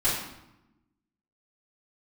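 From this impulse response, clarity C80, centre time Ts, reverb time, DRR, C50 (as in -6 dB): 5.0 dB, 54 ms, 0.90 s, -12.5 dB, 2.5 dB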